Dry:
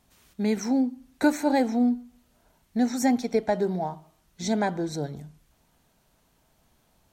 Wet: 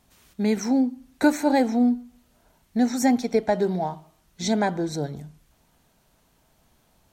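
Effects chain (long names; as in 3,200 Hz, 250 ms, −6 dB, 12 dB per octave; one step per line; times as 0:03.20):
0:03.56–0:04.51: dynamic equaliser 3,200 Hz, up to +4 dB, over −50 dBFS, Q 0.99
level +2.5 dB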